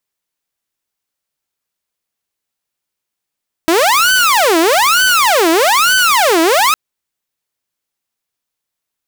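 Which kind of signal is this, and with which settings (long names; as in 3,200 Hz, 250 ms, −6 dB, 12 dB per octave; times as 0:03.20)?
siren wail 322–1,520 Hz 1.1 per second saw −6 dBFS 3.06 s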